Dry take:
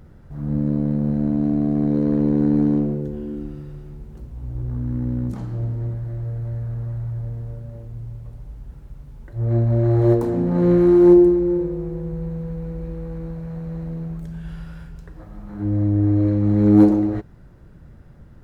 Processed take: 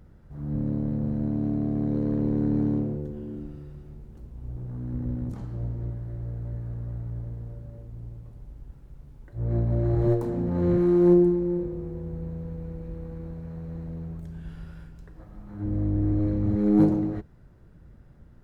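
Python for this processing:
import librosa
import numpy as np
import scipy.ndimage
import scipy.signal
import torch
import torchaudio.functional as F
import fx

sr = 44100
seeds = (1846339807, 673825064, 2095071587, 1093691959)

y = fx.octave_divider(x, sr, octaves=1, level_db=-5.0)
y = F.gain(torch.from_numpy(y), -7.5).numpy()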